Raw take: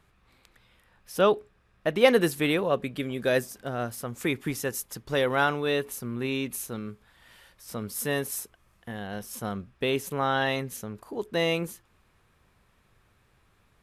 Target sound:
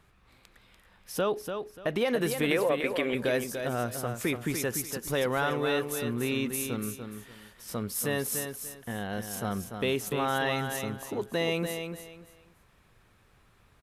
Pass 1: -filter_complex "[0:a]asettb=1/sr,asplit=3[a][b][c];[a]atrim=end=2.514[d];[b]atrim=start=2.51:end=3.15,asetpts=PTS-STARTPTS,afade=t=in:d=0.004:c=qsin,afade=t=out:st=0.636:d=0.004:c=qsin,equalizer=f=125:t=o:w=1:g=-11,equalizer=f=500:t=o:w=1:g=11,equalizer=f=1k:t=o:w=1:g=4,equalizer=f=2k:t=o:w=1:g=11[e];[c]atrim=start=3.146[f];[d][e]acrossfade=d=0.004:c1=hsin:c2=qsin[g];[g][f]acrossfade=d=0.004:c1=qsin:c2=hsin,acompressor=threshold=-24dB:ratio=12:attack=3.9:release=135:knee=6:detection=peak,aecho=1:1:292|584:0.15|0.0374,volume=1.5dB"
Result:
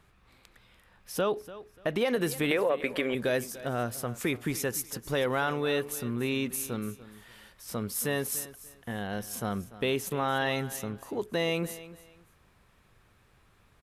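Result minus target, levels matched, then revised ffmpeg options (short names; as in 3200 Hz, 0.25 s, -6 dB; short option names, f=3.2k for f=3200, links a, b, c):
echo-to-direct -9.5 dB
-filter_complex "[0:a]asettb=1/sr,asplit=3[a][b][c];[a]atrim=end=2.514[d];[b]atrim=start=2.51:end=3.15,asetpts=PTS-STARTPTS,afade=t=in:d=0.004:c=qsin,afade=t=out:st=0.636:d=0.004:c=qsin,equalizer=f=125:t=o:w=1:g=-11,equalizer=f=500:t=o:w=1:g=11,equalizer=f=1k:t=o:w=1:g=4,equalizer=f=2k:t=o:w=1:g=11[e];[c]atrim=start=3.146[f];[d][e]acrossfade=d=0.004:c1=hsin:c2=qsin[g];[g][f]acrossfade=d=0.004:c1=qsin:c2=hsin,acompressor=threshold=-24dB:ratio=12:attack=3.9:release=135:knee=6:detection=peak,aecho=1:1:292|584|876:0.447|0.112|0.0279,volume=1.5dB"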